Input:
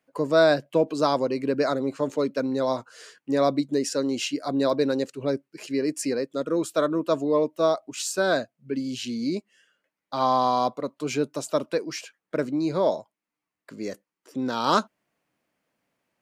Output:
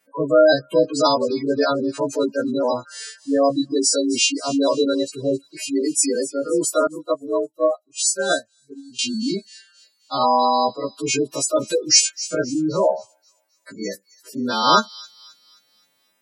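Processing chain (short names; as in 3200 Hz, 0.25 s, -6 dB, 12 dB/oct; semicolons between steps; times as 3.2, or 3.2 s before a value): frequency quantiser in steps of 2 st; spectral gate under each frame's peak -15 dB strong; 11.53–12.35 tone controls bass +7 dB, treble +14 dB; thin delay 0.264 s, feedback 42%, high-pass 3700 Hz, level -14.5 dB; 6.87–8.99 upward expander 2.5:1, over -34 dBFS; gain +5 dB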